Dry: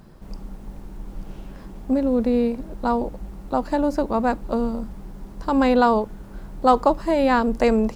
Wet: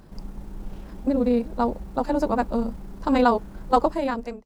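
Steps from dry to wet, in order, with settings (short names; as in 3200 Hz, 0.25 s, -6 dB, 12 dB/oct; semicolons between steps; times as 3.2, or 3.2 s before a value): ending faded out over 1.31 s; pre-echo 35 ms -23 dB; granular stretch 0.56×, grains 64 ms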